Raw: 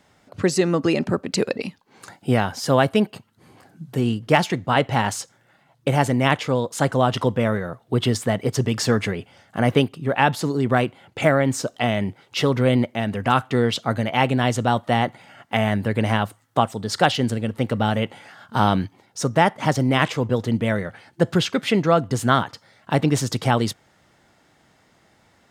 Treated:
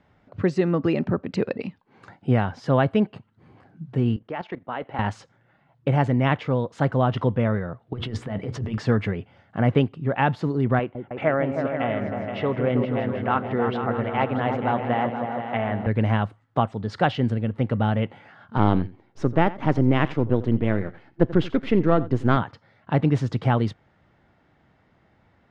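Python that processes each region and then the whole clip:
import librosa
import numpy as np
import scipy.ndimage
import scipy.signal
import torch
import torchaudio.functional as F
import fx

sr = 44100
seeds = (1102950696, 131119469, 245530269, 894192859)

y = fx.chain(x, sr, fx.highpass(hz=310.0, slope=12),
    fx.air_absorb(metres=160.0),
    fx.level_steps(step_db=13), at=(4.16, 4.99))
y = fx.chain(y, sr, fx.over_compress(threshold_db=-26.0, ratio=-1.0),
    fx.hum_notches(base_hz=60, count=10),
    fx.doubler(ms=14.0, db=-13), at=(7.93, 8.78))
y = fx.chain(y, sr, fx.bass_treble(bass_db=-10, treble_db=-15),
    fx.echo_opening(ms=158, hz=400, octaves=2, feedback_pct=70, wet_db=-3), at=(10.79, 15.87))
y = fx.chain(y, sr, fx.halfwave_gain(db=-7.0),
    fx.peak_eq(hz=330.0, db=7.5, octaves=0.84),
    fx.echo_single(ms=86, db=-18.0), at=(18.57, 22.37))
y = scipy.signal.sosfilt(scipy.signal.butter(2, 2500.0, 'lowpass', fs=sr, output='sos'), y)
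y = fx.low_shelf(y, sr, hz=160.0, db=8.5)
y = y * 10.0 ** (-4.0 / 20.0)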